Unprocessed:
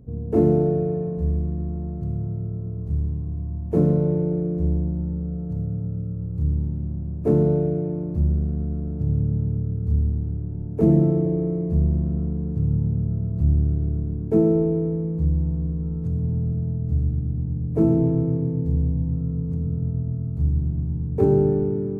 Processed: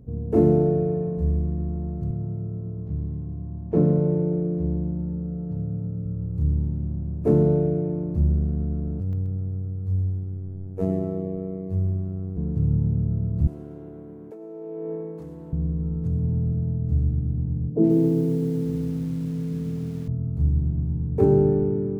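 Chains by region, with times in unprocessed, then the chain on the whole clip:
0:02.11–0:06.06: high-pass filter 100 Hz + high-frequency loss of the air 160 metres
0:09.00–0:12.37: parametric band 210 Hz −5 dB 1.6 octaves + phases set to zero 94.2 Hz + repeating echo 130 ms, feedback 33%, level −11.5 dB
0:13.47–0:15.53: high-pass filter 510 Hz + compressor whose output falls as the input rises −34 dBFS
0:17.70–0:20.08: flat-topped band-pass 320 Hz, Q 0.7 + feedback echo at a low word length 134 ms, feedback 55%, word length 7 bits, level −11.5 dB
whole clip: no processing

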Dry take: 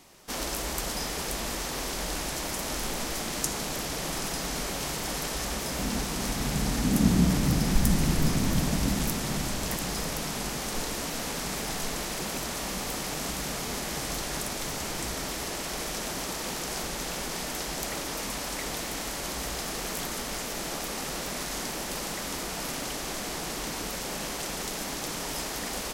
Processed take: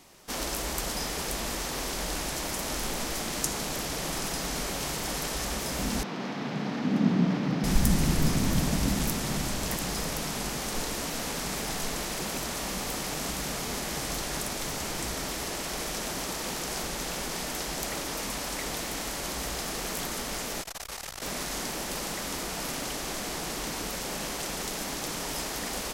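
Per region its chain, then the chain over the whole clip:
0:06.03–0:07.64: high-pass filter 160 Hz 24 dB per octave + high-frequency loss of the air 250 metres
0:20.61–0:21.22: parametric band 250 Hz −14.5 dB 1.5 octaves + saturating transformer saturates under 870 Hz
whole clip: no processing

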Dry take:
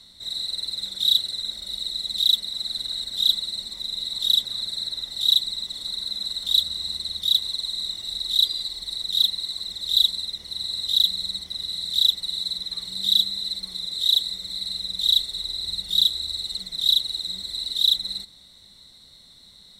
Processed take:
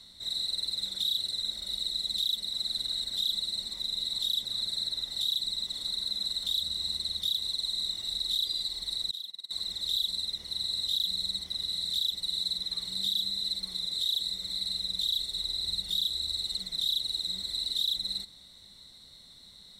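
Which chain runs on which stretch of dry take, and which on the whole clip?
0:09.11–0:09.51: high-pass filter 250 Hz 6 dB per octave + noise gate −28 dBFS, range −23 dB + downward compressor 20 to 1, threshold −32 dBFS
whole clip: dynamic equaliser 1,400 Hz, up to −4 dB, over −35 dBFS, Q 0.73; brickwall limiter −18 dBFS; level −2.5 dB

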